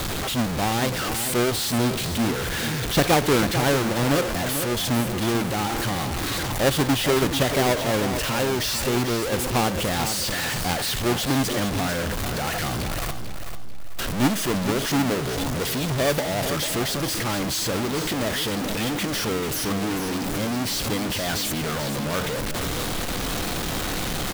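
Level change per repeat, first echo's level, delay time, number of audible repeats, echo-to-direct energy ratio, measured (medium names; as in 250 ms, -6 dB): -9.5 dB, -9.0 dB, 443 ms, 3, -8.5 dB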